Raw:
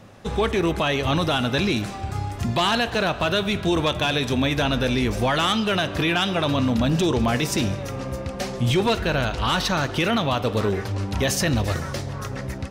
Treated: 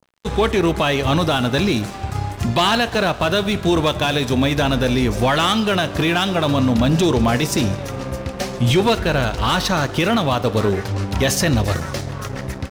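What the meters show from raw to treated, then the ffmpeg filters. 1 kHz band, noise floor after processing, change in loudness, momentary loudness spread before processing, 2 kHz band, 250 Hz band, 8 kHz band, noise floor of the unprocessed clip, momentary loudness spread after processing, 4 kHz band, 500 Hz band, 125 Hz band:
+4.0 dB, -31 dBFS, +4.0 dB, 9 LU, +3.0 dB, +4.5 dB, +4.5 dB, -33 dBFS, 10 LU, +3.0 dB, +4.5 dB, +4.5 dB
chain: -af "aeval=exprs='sgn(val(0))*max(abs(val(0))-0.0106,0)':c=same,adynamicequalizer=threshold=0.0178:dfrequency=2600:dqfactor=0.92:tfrequency=2600:tqfactor=0.92:attack=5:release=100:ratio=0.375:range=2:mode=cutabove:tftype=bell,volume=5.5dB"

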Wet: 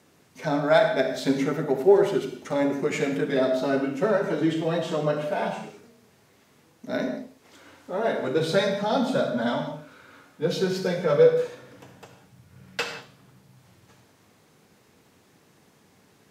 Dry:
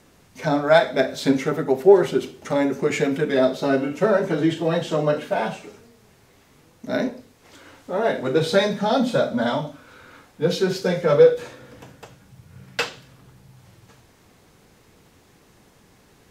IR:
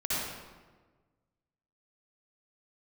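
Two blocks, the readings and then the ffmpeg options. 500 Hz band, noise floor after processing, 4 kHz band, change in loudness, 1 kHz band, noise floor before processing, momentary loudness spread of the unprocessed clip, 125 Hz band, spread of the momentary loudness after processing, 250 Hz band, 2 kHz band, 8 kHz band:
-3.5 dB, -60 dBFS, -4.0 dB, -3.5 dB, -3.5 dB, -56 dBFS, 13 LU, -4.0 dB, 13 LU, -3.5 dB, -3.5 dB, -4.0 dB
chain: -filter_complex "[0:a]highpass=110,asplit=2[a][b];[1:a]atrim=start_sample=2205,afade=t=out:st=0.24:d=0.01,atrim=end_sample=11025[c];[b][c]afir=irnorm=-1:irlink=0,volume=-12dB[d];[a][d]amix=inputs=2:normalize=0,volume=-6dB"

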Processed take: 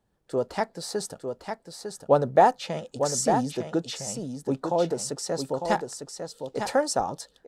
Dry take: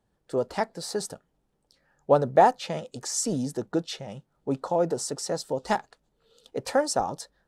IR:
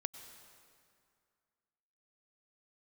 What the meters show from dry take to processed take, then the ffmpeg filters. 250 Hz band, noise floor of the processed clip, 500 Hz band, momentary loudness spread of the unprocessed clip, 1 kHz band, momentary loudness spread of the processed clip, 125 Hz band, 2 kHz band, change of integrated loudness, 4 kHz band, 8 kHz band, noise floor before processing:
+1.0 dB, -67 dBFS, +1.0 dB, 15 LU, +1.0 dB, 15 LU, +1.0 dB, +0.5 dB, 0.0 dB, +0.5 dB, +0.5 dB, -74 dBFS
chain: -af "aecho=1:1:902:0.473"

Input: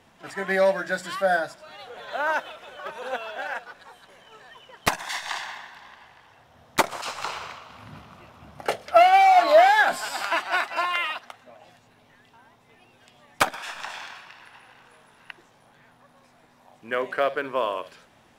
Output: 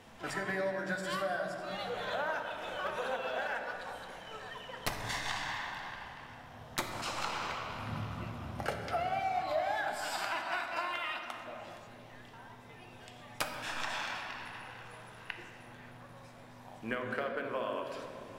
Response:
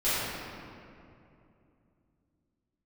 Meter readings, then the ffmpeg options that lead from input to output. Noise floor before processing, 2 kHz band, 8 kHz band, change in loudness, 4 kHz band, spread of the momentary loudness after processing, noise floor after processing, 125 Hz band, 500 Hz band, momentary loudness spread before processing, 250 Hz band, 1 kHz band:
-58 dBFS, -10.0 dB, -8.5 dB, -14.0 dB, -8.0 dB, 17 LU, -53 dBFS, +1.0 dB, -13.0 dB, 22 LU, -5.0 dB, -14.0 dB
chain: -filter_complex "[0:a]acompressor=threshold=-35dB:ratio=8,asplit=2[a][b];[1:a]atrim=start_sample=2205,lowshelf=f=290:g=8.5[c];[b][c]afir=irnorm=-1:irlink=0,volume=-15.5dB[d];[a][d]amix=inputs=2:normalize=0"

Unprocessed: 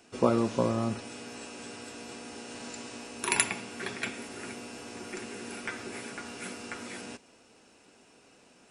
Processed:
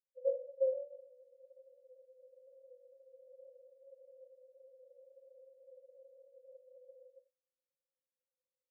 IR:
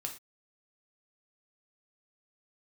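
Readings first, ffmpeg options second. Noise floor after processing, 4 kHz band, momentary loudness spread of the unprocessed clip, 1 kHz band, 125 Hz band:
under -85 dBFS, under -40 dB, 15 LU, under -40 dB, under -40 dB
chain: -filter_complex "[0:a]agate=range=-30dB:threshold=-50dB:ratio=16:detection=peak,asuperpass=centerf=530:order=20:qfactor=7.4,asplit=2[a][b];[1:a]atrim=start_sample=2205[c];[b][c]afir=irnorm=-1:irlink=0,volume=-6.5dB[d];[a][d]amix=inputs=2:normalize=0,volume=-3.5dB"

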